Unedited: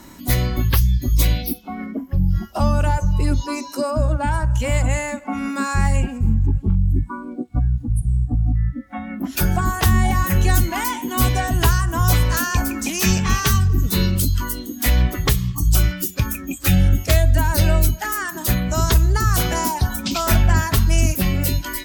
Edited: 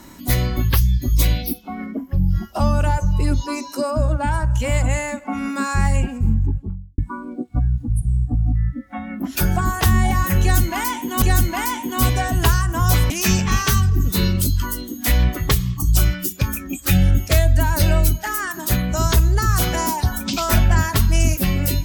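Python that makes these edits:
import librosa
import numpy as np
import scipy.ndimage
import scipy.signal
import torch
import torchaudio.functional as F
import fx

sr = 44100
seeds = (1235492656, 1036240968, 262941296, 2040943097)

y = fx.studio_fade_out(x, sr, start_s=6.27, length_s=0.71)
y = fx.edit(y, sr, fx.repeat(start_s=10.41, length_s=0.81, count=2),
    fx.cut(start_s=12.29, length_s=0.59), tone=tone)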